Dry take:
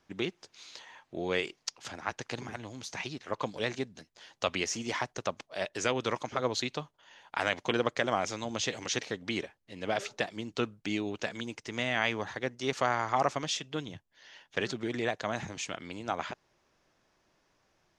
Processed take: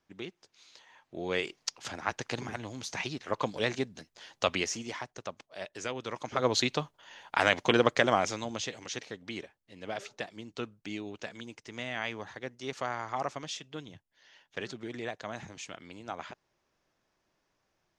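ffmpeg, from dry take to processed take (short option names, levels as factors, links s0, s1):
-af "volume=5.01,afade=t=in:st=0.84:d=0.92:silence=0.298538,afade=t=out:st=4.49:d=0.47:silence=0.354813,afade=t=in:st=6.12:d=0.44:silence=0.266073,afade=t=out:st=8:d=0.73:silence=0.281838"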